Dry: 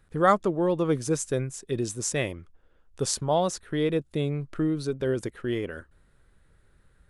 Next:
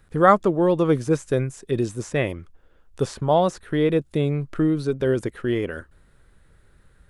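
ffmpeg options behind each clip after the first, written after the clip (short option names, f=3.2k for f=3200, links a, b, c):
-filter_complex "[0:a]acrossover=split=2700[a][b];[b]acompressor=threshold=-46dB:ratio=4:attack=1:release=60[c];[a][c]amix=inputs=2:normalize=0,volume=5.5dB"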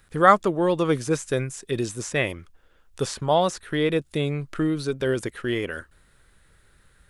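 -af "tiltshelf=f=1.2k:g=-5,volume=1dB"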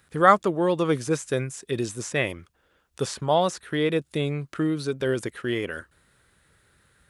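-af "highpass=75,volume=-1dB"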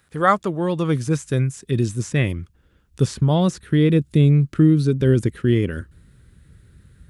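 -af "asubboost=boost=10:cutoff=240"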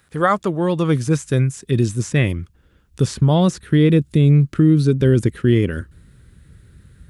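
-af "alimiter=level_in=7.5dB:limit=-1dB:release=50:level=0:latency=1,volume=-4.5dB"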